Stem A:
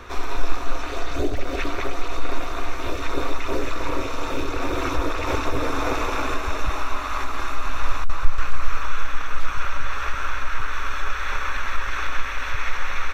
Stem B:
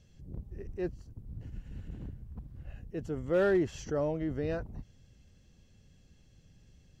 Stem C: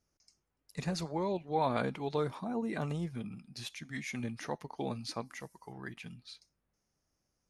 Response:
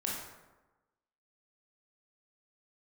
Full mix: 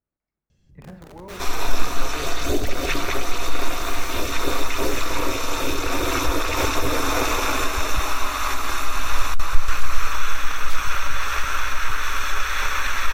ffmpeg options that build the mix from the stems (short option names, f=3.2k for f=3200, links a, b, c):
-filter_complex "[0:a]crystalizer=i=3:c=0,adelay=1300,volume=1dB[a];[1:a]aeval=exprs='(mod(59.6*val(0)+1,2)-1)/59.6':c=same,adelay=500,volume=-5.5dB,asplit=2[b][c];[c]volume=-8dB[d];[2:a]lowpass=f=2.1k:w=0.5412,lowpass=f=2.1k:w=1.3066,volume=-11dB,asplit=2[e][f];[f]volume=-4dB[g];[3:a]atrim=start_sample=2205[h];[d][g]amix=inputs=2:normalize=0[i];[i][h]afir=irnorm=-1:irlink=0[j];[a][b][e][j]amix=inputs=4:normalize=0"